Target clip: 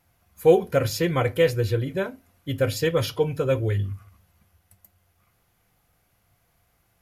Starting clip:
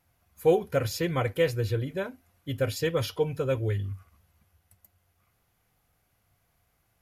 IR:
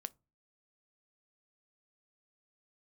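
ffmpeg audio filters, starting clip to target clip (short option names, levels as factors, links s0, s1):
-filter_complex "[1:a]atrim=start_sample=2205[s0];[0:a][s0]afir=irnorm=-1:irlink=0,volume=2.51"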